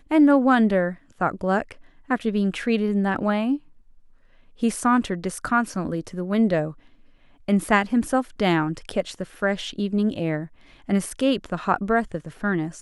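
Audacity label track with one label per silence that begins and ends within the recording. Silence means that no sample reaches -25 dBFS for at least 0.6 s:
3.560000	4.630000	silence
6.690000	7.490000	silence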